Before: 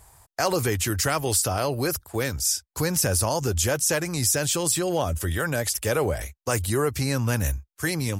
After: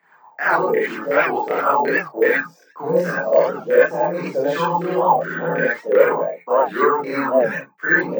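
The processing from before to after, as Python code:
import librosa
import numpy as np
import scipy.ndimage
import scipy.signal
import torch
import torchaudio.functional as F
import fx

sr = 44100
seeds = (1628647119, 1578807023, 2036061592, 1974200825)

p1 = fx.filter_lfo_lowpass(x, sr, shape='saw_down', hz=2.7, low_hz=460.0, high_hz=2000.0, q=5.2)
p2 = scipy.signal.sosfilt(scipy.signal.butter(16, 160.0, 'highpass', fs=sr, output='sos'), p1)
p3 = fx.high_shelf(p2, sr, hz=7700.0, db=-9.0)
p4 = p3 + fx.room_early_taps(p3, sr, ms=(18, 30), db=(-15.5, -10.5), dry=0)
p5 = fx.rev_gated(p4, sr, seeds[0], gate_ms=110, shape='rising', drr_db=-6.0)
p6 = fx.chorus_voices(p5, sr, voices=6, hz=0.61, base_ms=29, depth_ms=1.3, mix_pct=65)
p7 = fx.high_shelf(p6, sr, hz=3700.0, db=10.0)
p8 = fx.rider(p7, sr, range_db=10, speed_s=0.5)
p9 = p7 + F.gain(torch.from_numpy(p8), 2.0).numpy()
p10 = np.repeat(p9[::2], 2)[:len(p9)]
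p11 = fx.record_warp(p10, sr, rpm=78.0, depth_cents=160.0)
y = F.gain(torch.from_numpy(p11), -8.5).numpy()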